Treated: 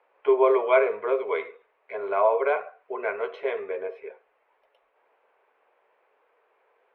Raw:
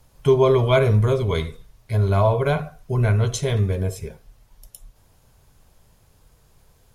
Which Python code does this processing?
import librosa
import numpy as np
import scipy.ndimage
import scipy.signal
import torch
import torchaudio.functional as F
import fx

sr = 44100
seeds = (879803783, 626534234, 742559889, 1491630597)

y = scipy.signal.sosfilt(scipy.signal.ellip(3, 1.0, 50, [430.0, 2400.0], 'bandpass', fs=sr, output='sos'), x)